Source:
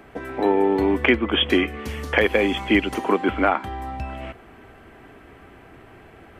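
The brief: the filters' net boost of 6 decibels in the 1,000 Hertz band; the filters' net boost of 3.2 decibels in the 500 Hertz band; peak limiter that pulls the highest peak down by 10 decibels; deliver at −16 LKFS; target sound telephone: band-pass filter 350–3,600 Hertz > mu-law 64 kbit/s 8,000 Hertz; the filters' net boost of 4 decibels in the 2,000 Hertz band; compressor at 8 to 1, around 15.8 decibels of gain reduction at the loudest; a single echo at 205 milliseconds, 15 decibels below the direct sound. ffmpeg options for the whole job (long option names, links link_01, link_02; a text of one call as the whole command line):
ffmpeg -i in.wav -af "equalizer=frequency=500:width_type=o:gain=5,equalizer=frequency=1000:width_type=o:gain=5.5,equalizer=frequency=2000:width_type=o:gain=3.5,acompressor=threshold=-26dB:ratio=8,alimiter=limit=-22.5dB:level=0:latency=1,highpass=350,lowpass=3600,aecho=1:1:205:0.178,volume=19dB" -ar 8000 -c:a pcm_mulaw out.wav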